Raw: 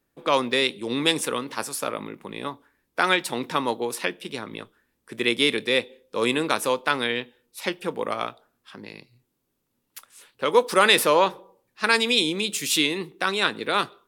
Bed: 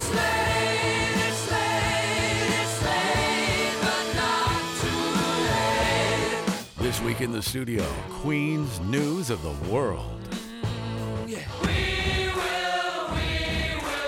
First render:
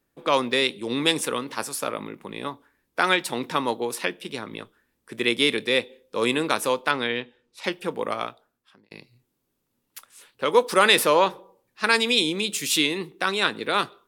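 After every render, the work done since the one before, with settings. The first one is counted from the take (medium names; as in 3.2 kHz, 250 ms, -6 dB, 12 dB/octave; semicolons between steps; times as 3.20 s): 6.91–7.64 s: distance through air 77 m; 8.14–8.91 s: fade out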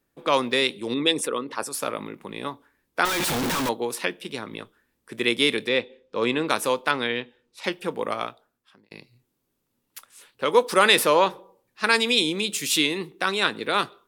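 0.94–1.74 s: resonances exaggerated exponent 1.5; 3.05–3.69 s: one-bit comparator; 5.68–6.48 s: distance through air 120 m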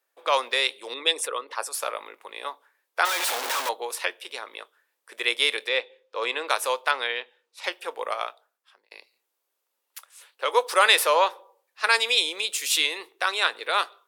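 high-pass 530 Hz 24 dB/octave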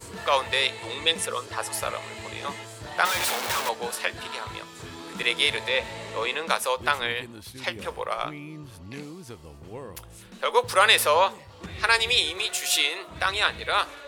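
add bed -14 dB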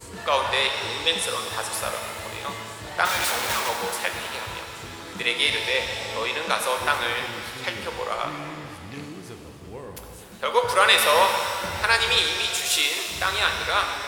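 pitch-shifted reverb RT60 2.5 s, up +7 st, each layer -8 dB, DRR 3.5 dB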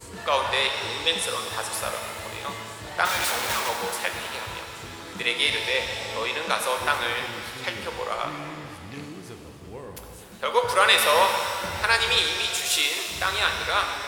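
trim -1 dB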